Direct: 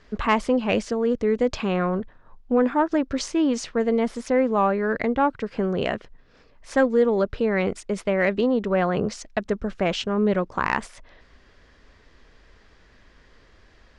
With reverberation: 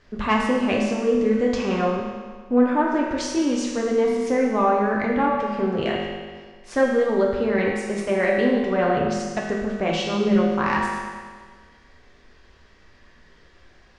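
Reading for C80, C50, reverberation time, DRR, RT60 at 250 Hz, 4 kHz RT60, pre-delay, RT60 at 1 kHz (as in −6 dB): 3.0 dB, 1.0 dB, 1.6 s, −3.0 dB, 1.6 s, 1.5 s, 5 ms, 1.6 s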